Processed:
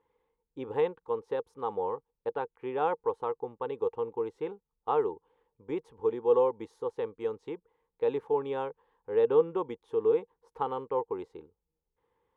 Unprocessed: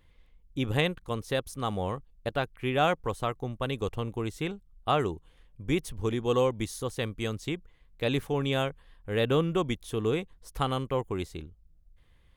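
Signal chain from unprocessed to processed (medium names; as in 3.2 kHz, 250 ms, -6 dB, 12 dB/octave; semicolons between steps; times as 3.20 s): two resonant band-passes 640 Hz, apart 0.9 oct; trim +6.5 dB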